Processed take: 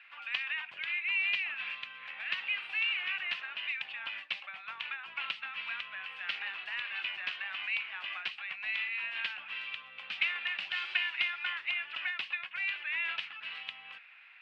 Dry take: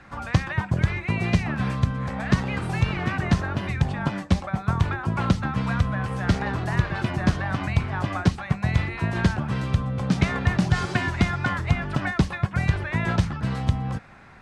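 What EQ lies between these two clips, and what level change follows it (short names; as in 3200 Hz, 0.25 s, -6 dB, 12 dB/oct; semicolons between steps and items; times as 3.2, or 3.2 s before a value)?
resonant high-pass 2700 Hz, resonance Q 5.2; air absorption 430 m; 0.0 dB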